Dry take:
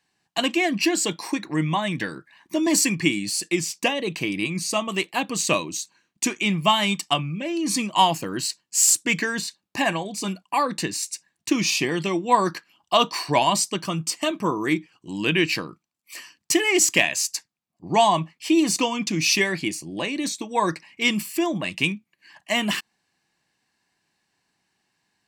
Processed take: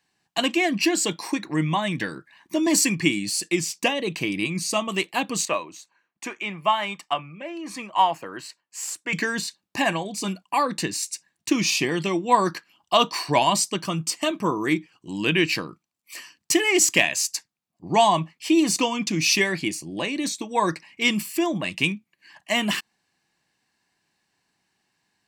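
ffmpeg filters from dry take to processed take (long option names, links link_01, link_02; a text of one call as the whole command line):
ffmpeg -i in.wav -filter_complex "[0:a]asettb=1/sr,asplit=3[link_01][link_02][link_03];[link_01]atrim=end=5.454[link_04];[link_02]atrim=start=5.45:end=9.13,asetpts=PTS-STARTPTS,afade=type=in:duration=0.004:curve=qsin,afade=type=out:start_time=3.676:duration=0.004:curve=qsin,acrossover=split=470 2300:gain=0.2 1 0.178[link_05][link_06][link_07];[link_05][link_06][link_07]amix=inputs=3:normalize=0[link_08];[link_03]atrim=start=9.126[link_09];[link_04][link_08]acrossfade=duration=0.004:curve1=hsin:curve2=qsin[link_10];[link_10][link_09]acrossfade=duration=0.004:curve1=qsin:curve2=hsin" out.wav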